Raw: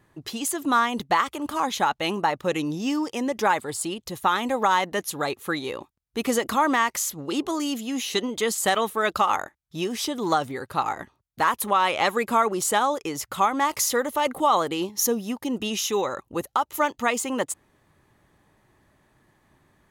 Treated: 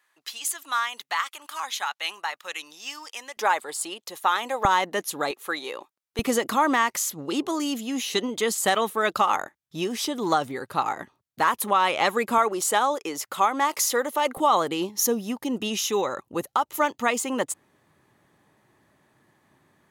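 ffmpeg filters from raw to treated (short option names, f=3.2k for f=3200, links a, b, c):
-af "asetnsamples=n=441:p=0,asendcmd='3.37 highpass f 530;4.65 highpass f 220;5.31 highpass f 470;6.19 highpass f 130;12.38 highpass f 280;14.37 highpass f 120',highpass=1.4k"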